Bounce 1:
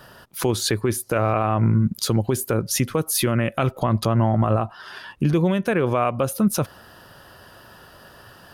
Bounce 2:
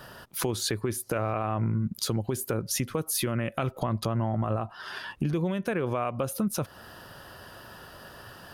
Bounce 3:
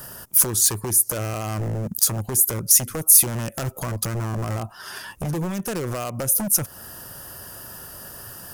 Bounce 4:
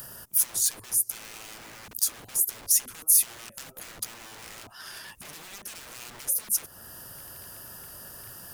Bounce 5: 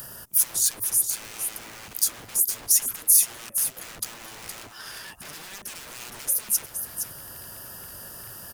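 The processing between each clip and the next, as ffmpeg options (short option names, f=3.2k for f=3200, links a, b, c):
-af "acompressor=threshold=-29dB:ratio=2.5"
-af "lowshelf=f=260:g=5,aeval=exprs='0.0794*(abs(mod(val(0)/0.0794+3,4)-2)-1)':c=same,aexciter=amount=7.5:drive=3.2:freq=5.6k,volume=1dB"
-filter_complex "[0:a]acrossover=split=1900[a][b];[a]aeval=exprs='(mod(56.2*val(0)+1,2)-1)/56.2':c=same[c];[b]acompressor=mode=upward:threshold=-33dB:ratio=2.5[d];[c][d]amix=inputs=2:normalize=0,volume=-6.5dB"
-af "aecho=1:1:466:0.398,volume=2.5dB"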